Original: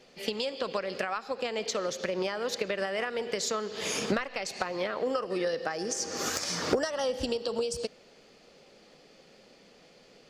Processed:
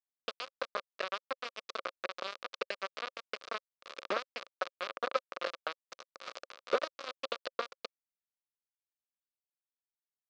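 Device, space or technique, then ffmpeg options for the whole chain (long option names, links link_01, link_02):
hand-held game console: -af "acrusher=bits=3:mix=0:aa=0.000001,highpass=490,equalizer=frequency=540:width_type=q:width=4:gain=9,equalizer=frequency=860:width_type=q:width=4:gain=-7,equalizer=frequency=1200:width_type=q:width=4:gain=8,equalizer=frequency=1900:width_type=q:width=4:gain=-4,equalizer=frequency=3100:width_type=q:width=4:gain=-3,lowpass=frequency=4200:width=0.5412,lowpass=frequency=4200:width=1.3066,volume=-4dB"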